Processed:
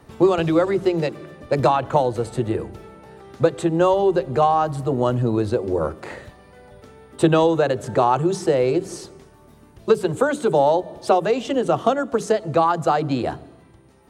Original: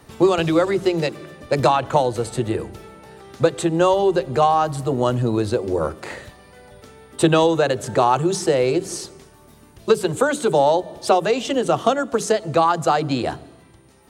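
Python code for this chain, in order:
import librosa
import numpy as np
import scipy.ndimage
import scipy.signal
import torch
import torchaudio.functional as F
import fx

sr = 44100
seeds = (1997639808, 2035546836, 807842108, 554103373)

y = fx.high_shelf(x, sr, hz=2300.0, db=-8.0)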